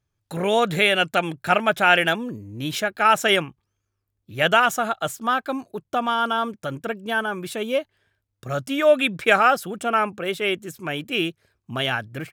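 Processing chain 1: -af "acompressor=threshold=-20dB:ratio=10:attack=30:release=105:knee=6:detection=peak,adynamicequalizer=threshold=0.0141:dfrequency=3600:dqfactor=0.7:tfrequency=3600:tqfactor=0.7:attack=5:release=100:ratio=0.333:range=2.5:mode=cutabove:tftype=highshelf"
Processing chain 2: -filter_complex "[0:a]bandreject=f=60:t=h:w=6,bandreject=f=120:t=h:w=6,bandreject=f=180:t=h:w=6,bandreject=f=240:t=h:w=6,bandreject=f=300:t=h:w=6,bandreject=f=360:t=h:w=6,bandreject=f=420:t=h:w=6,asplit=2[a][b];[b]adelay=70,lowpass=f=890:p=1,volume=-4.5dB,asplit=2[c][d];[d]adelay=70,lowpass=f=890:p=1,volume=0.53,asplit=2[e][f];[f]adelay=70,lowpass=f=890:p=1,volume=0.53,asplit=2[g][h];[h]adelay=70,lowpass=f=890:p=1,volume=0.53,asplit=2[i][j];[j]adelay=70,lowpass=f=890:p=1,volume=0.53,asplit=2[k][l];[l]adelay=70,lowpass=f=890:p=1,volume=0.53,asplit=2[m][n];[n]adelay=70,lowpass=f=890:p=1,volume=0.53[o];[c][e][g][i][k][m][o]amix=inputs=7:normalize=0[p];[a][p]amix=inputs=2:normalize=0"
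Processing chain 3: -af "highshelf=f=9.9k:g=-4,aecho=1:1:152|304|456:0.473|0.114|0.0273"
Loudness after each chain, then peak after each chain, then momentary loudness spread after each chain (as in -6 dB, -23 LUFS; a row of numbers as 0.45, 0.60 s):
-25.0, -21.5, -21.0 LUFS; -8.0, -2.5, -3.0 dBFS; 9, 13, 13 LU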